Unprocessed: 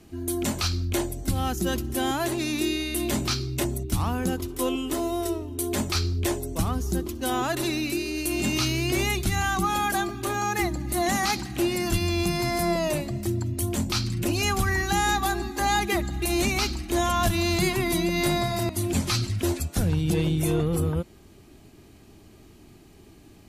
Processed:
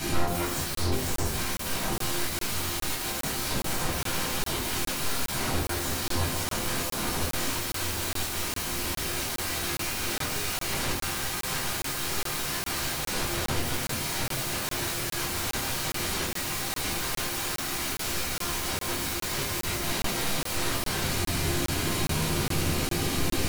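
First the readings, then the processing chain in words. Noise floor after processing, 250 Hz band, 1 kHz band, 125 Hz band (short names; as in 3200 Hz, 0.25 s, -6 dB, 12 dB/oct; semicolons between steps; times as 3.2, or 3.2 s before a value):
-34 dBFS, -7.5 dB, -5.0 dB, -6.0 dB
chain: tilt shelf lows -6 dB; reverse; compressor 12:1, threshold -33 dBFS, peak gain reduction 15.5 dB; reverse; soft clip -38.5 dBFS, distortion -9 dB; on a send: diffused feedback echo 1.747 s, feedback 49%, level -14 dB; on the sum: sine folder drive 18 dB, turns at -33.5 dBFS; shoebox room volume 820 m³, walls furnished, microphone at 7.9 m; crackling interface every 0.41 s, samples 1024, zero, from 0.75; gain -2 dB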